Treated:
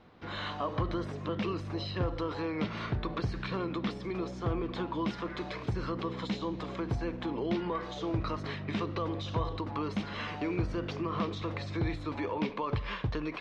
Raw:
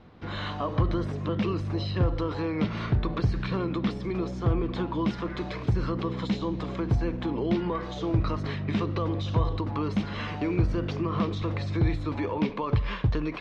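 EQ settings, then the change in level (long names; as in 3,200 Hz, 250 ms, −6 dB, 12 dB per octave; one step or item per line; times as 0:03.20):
low-shelf EQ 250 Hz −8 dB
−2.0 dB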